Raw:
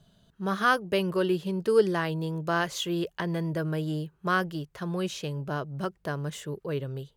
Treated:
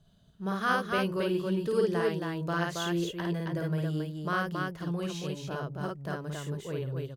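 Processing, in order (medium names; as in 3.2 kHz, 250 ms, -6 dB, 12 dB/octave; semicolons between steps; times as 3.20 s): bass shelf 120 Hz +6.5 dB; loudspeakers at several distances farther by 18 m -2 dB, 94 m -3 dB; trim -6.5 dB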